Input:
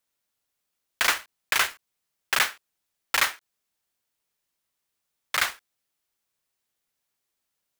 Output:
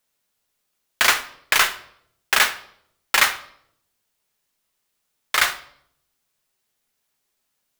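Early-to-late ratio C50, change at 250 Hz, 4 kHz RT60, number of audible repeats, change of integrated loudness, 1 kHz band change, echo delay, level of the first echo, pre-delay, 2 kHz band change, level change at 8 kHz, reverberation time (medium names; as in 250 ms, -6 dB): 14.5 dB, +6.0 dB, 0.55 s, no echo, +6.0 dB, +6.0 dB, no echo, no echo, 5 ms, +6.0 dB, +6.0 dB, 0.70 s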